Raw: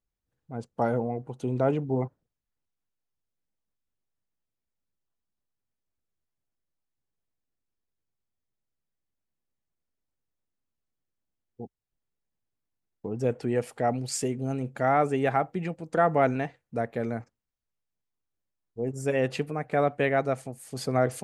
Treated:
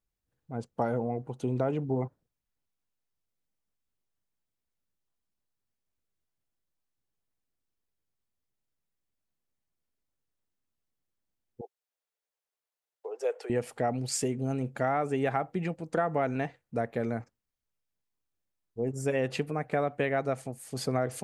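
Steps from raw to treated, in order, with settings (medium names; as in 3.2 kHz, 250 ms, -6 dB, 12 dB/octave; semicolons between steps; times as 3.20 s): 11.61–13.50 s: steep high-pass 420 Hz 48 dB/octave; compression, threshold -24 dBFS, peak gain reduction 7.5 dB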